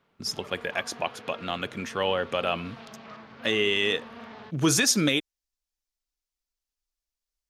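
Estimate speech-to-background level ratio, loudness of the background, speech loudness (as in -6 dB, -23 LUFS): 19.0 dB, -45.5 LUFS, -26.5 LUFS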